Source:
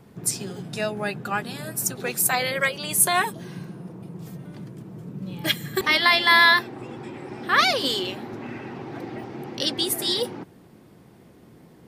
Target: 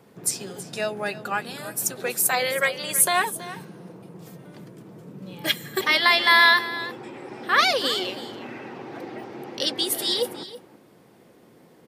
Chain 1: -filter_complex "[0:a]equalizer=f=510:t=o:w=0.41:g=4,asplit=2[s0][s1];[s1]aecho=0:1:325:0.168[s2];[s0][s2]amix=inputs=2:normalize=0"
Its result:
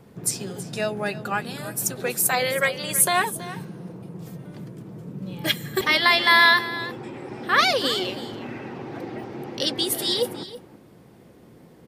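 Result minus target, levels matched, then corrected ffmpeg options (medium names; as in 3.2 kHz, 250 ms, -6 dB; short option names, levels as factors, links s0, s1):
250 Hz band +3.5 dB
-filter_complex "[0:a]highpass=f=310:p=1,equalizer=f=510:t=o:w=0.41:g=4,asplit=2[s0][s1];[s1]aecho=0:1:325:0.168[s2];[s0][s2]amix=inputs=2:normalize=0"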